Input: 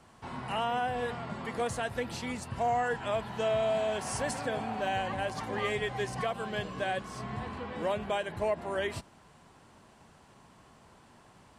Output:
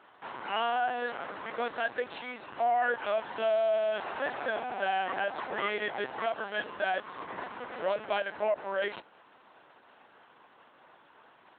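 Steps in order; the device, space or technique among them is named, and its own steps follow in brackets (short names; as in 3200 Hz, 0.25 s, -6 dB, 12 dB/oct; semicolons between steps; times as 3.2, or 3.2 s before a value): talking toy (LPC vocoder at 8 kHz pitch kept; HPF 370 Hz 12 dB/oct; bell 1500 Hz +5 dB 0.31 oct); gain +2 dB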